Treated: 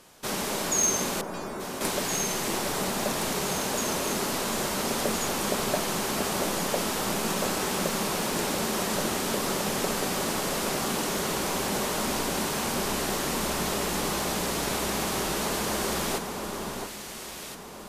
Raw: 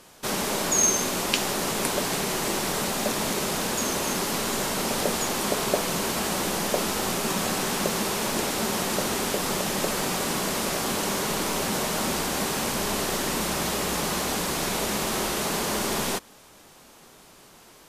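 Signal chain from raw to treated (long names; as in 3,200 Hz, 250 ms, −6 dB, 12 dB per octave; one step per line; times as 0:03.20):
hard clipping −13.5 dBFS, distortion −28 dB
0:01.21–0:01.81: stiff-string resonator 180 Hz, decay 0.76 s, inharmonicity 0.002
delay that swaps between a low-pass and a high-pass 683 ms, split 1,600 Hz, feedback 60%, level −3.5 dB
level −3 dB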